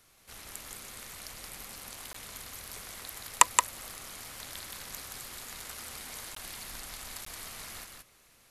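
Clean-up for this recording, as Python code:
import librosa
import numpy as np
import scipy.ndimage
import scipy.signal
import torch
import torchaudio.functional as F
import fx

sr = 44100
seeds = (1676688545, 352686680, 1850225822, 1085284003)

y = fx.fix_interpolate(x, sr, at_s=(2.13, 6.35, 7.25), length_ms=14.0)
y = fx.fix_echo_inverse(y, sr, delay_ms=174, level_db=-4.0)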